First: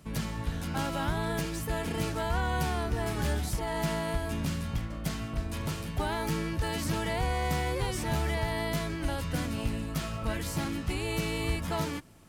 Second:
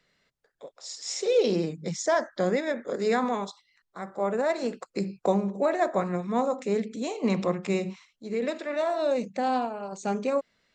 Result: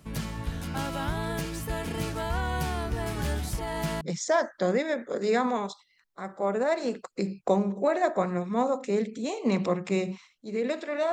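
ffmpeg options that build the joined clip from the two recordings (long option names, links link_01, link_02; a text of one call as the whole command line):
ffmpeg -i cue0.wav -i cue1.wav -filter_complex "[0:a]apad=whole_dur=11.12,atrim=end=11.12,atrim=end=4.012[link_01];[1:a]atrim=start=1.788:end=8.9[link_02];[link_01][link_02]acrossfade=duration=0.004:curve1=hsin:curve2=hsin" out.wav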